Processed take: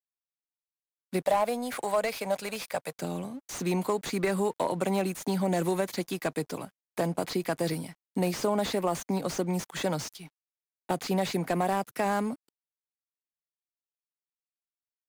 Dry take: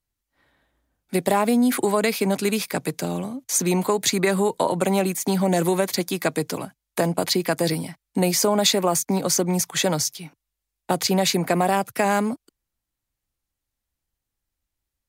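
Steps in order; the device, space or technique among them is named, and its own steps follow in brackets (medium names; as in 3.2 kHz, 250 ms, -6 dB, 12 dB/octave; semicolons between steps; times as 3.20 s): 1.22–2.96 s: resonant low shelf 440 Hz -7.5 dB, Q 3; early transistor amplifier (crossover distortion -49 dBFS; slew-rate limiter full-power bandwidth 180 Hz); trim -6.5 dB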